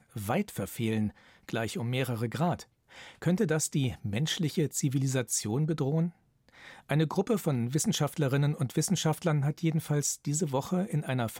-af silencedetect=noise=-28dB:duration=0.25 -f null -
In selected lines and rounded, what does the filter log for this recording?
silence_start: 1.07
silence_end: 1.49 | silence_duration: 0.41
silence_start: 2.54
silence_end: 3.22 | silence_duration: 0.68
silence_start: 6.07
silence_end: 6.91 | silence_duration: 0.84